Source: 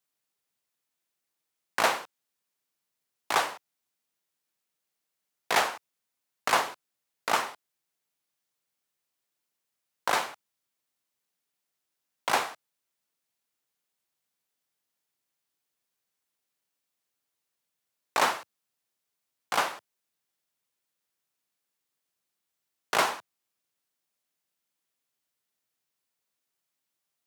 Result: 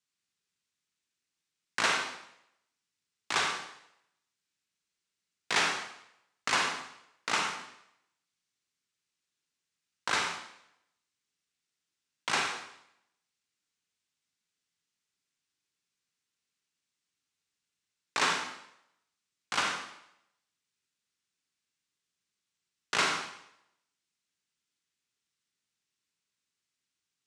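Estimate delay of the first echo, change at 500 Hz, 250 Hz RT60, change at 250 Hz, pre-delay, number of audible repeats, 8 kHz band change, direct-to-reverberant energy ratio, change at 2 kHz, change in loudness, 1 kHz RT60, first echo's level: no echo audible, −7.5 dB, 0.70 s, −1.0 dB, 28 ms, no echo audible, 0.0 dB, 1.5 dB, 0.0 dB, −2.0 dB, 0.75 s, no echo audible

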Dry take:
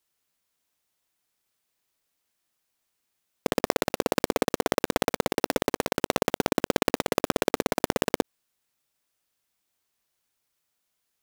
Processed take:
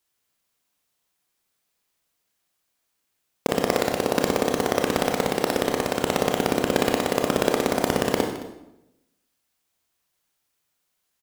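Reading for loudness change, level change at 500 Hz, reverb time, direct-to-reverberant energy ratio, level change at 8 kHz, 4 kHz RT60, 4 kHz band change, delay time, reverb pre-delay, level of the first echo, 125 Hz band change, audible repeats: +3.5 dB, +4.0 dB, 0.90 s, 2.0 dB, +3.0 dB, 0.75 s, +3.0 dB, 216 ms, 25 ms, −16.0 dB, +4.5 dB, 1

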